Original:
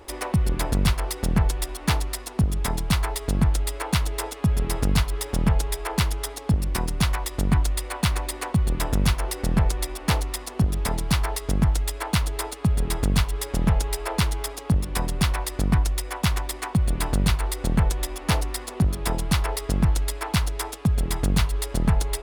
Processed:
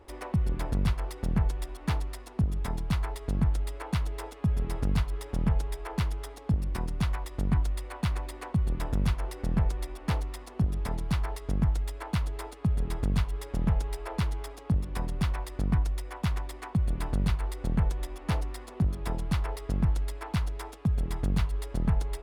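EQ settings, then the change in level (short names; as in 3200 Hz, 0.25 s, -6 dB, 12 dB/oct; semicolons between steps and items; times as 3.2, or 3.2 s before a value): tone controls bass +3 dB, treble 0 dB; high shelf 3500 Hz -10 dB; -8.0 dB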